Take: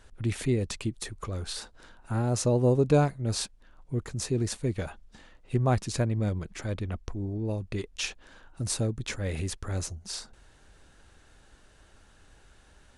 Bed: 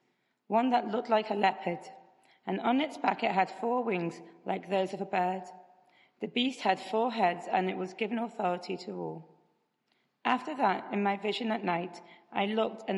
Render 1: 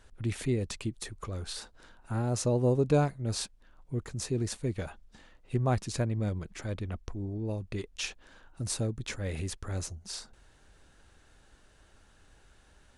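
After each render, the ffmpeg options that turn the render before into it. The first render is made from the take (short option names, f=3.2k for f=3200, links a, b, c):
-af "volume=-3dB"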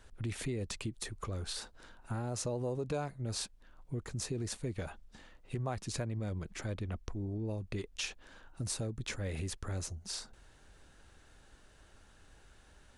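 -filter_complex "[0:a]acrossover=split=480[a][b];[a]alimiter=level_in=2dB:limit=-24dB:level=0:latency=1,volume=-2dB[c];[c][b]amix=inputs=2:normalize=0,acompressor=threshold=-35dB:ratio=2.5"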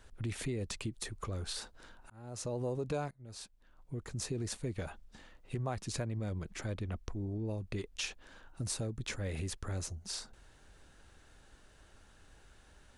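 -filter_complex "[0:a]asplit=3[a][b][c];[a]atrim=end=2.1,asetpts=PTS-STARTPTS,afade=t=out:st=2.096:d=0.004:c=hsin[d];[b]atrim=start=2.1:end=3.11,asetpts=PTS-STARTPTS,afade=t=in:d=0.49,afade=t=out:st=1.006:d=0.004:c=hsin:silence=0.112202[e];[c]atrim=start=3.11,asetpts=PTS-STARTPTS,afade=t=in:d=1.16:silence=0.112202[f];[d][e][f]concat=n=3:v=0:a=1"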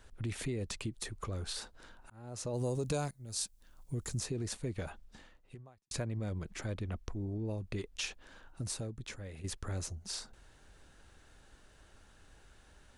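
-filter_complex "[0:a]asplit=3[a][b][c];[a]afade=t=out:st=2.53:d=0.02[d];[b]bass=f=250:g=4,treble=f=4k:g=15,afade=t=in:st=2.53:d=0.02,afade=t=out:st=4.18:d=0.02[e];[c]afade=t=in:st=4.18:d=0.02[f];[d][e][f]amix=inputs=3:normalize=0,asplit=3[g][h][i];[g]atrim=end=5.91,asetpts=PTS-STARTPTS,afade=t=out:st=5.18:d=0.73:c=qua[j];[h]atrim=start=5.91:end=9.44,asetpts=PTS-STARTPTS,afade=t=in:d=0.004:c=hsin,afade=t=out:st=2.56:d=0.97:silence=0.266073[k];[i]atrim=start=9.44,asetpts=PTS-STARTPTS,afade=t=in:d=0.004:c=hsin:silence=0.266073[l];[j][k][l]concat=n=3:v=0:a=1"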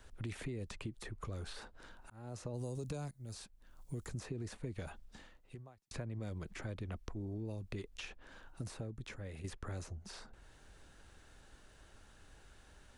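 -filter_complex "[0:a]acrossover=split=280|2700[a][b][c];[a]acompressor=threshold=-41dB:ratio=4[d];[b]acompressor=threshold=-46dB:ratio=4[e];[c]acompressor=threshold=-57dB:ratio=4[f];[d][e][f]amix=inputs=3:normalize=0"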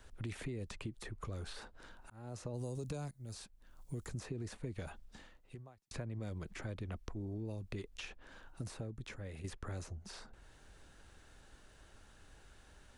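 -af anull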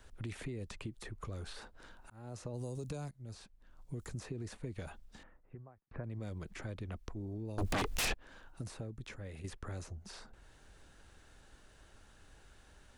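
-filter_complex "[0:a]asettb=1/sr,asplit=3[a][b][c];[a]atrim=end=3.094[d];[b]atrim=start=3.09:end=4,asetpts=PTS-STARTPTS,afade=t=in:d=0.004:c=qsin,afade=t=out:st=0.906:d=0.004:c=qsin,lowpass=f=3.5k:p=1[e];[c]atrim=start=3.996[f];[d][e]acrossfade=d=0.004:c1=hsin:c2=qsin[g];[g][f]acrossfade=d=0.004:c1=qsin:c2=hsin,asettb=1/sr,asplit=3[h][i][j];[h]atrim=end=5.234[k];[i]atrim=start=5.23:end=6.04,asetpts=PTS-STARTPTS,afade=t=in:d=0.004:c=qsin,afade=t=out:st=0.806:d=0.004:c=qsin,lowpass=f=1.8k:w=0.5412,lowpass=f=1.8k:w=1.3066[l];[j]atrim=start=6.036[m];[k][l]acrossfade=d=0.004:c1=hsin:c2=qsin[n];[n][m]acrossfade=d=0.004:c1=qsin:c2=hsin,asettb=1/sr,asplit=3[o][p][q];[o]atrim=end=7.584[r];[p]atrim=start=7.58:end=8.14,asetpts=PTS-STARTPTS,afade=t=in:d=0.004:c=qsin,afade=t=out:st=0.556:d=0.004:c=qsin,aeval=exprs='0.0335*sin(PI/2*7.08*val(0)/0.0335)':c=same[s];[q]atrim=start=8.136[t];[r][s]acrossfade=d=0.004:c1=hsin:c2=qsin[u];[u][t]acrossfade=d=0.004:c1=qsin:c2=hsin"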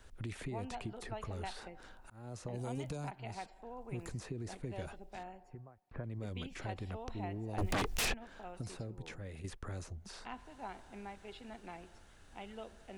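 -filter_complex "[1:a]volume=-18.5dB[a];[0:a][a]amix=inputs=2:normalize=0"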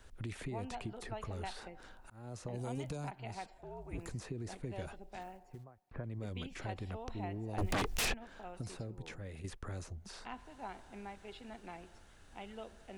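-filter_complex "[0:a]asettb=1/sr,asplit=3[a][b][c];[a]atrim=end=3.584[d];[b]atrim=start=3.58:end=3.98,asetpts=PTS-STARTPTS,afade=t=in:d=0.004:c=qsin,afade=t=out:st=0.396:d=0.004:c=qsin,afreqshift=-74[e];[c]atrim=start=3.976[f];[d][e]acrossfade=d=0.004:c1=hsin:c2=qsin[g];[g][f]acrossfade=d=0.004:c1=qsin:c2=hsin,asplit=3[h][i][j];[h]afade=t=out:st=5.2:d=0.02[k];[i]acrusher=bits=6:mode=log:mix=0:aa=0.000001,afade=t=in:st=5.2:d=0.02,afade=t=out:st=5.63:d=0.02[l];[j]afade=t=in:st=5.63:d=0.02[m];[k][l][m]amix=inputs=3:normalize=0"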